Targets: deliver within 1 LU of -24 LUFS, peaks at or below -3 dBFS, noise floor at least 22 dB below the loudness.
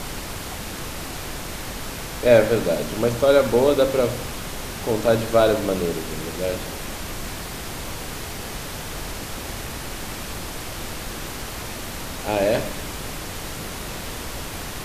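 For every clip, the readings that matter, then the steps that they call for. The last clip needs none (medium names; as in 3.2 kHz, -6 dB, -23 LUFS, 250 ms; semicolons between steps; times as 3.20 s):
noise floor -33 dBFS; noise floor target -47 dBFS; loudness -24.5 LUFS; peak level -3.0 dBFS; loudness target -24.0 LUFS
-> noise print and reduce 14 dB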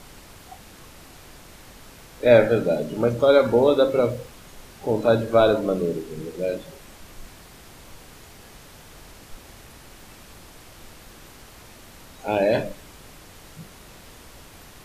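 noise floor -47 dBFS; loudness -21.0 LUFS; peak level -3.0 dBFS; loudness target -24.0 LUFS
-> trim -3 dB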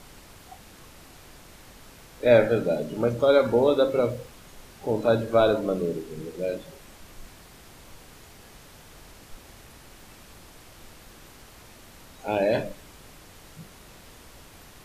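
loudness -24.0 LUFS; peak level -6.0 dBFS; noise floor -50 dBFS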